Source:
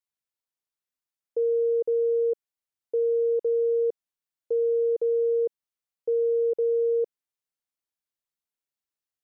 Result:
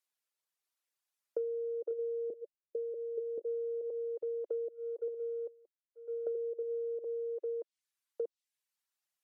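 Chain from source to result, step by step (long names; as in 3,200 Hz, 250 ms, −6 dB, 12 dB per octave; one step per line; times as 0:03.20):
delay that plays each chunk backwards 635 ms, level −5 dB
0:04.68–0:06.27: downward expander −15 dBFS
high-pass filter 330 Hz 24 dB per octave
treble cut that deepens with the level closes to 450 Hz, closed at −20.5 dBFS
low-shelf EQ 440 Hz −7 dB
downward compressor 6 to 1, threshold −38 dBFS, peak gain reduction 13 dB
0:02.30–0:03.38: Chebyshev low-pass with heavy ripple 590 Hz, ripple 3 dB
reverb reduction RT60 0.74 s
level +4.5 dB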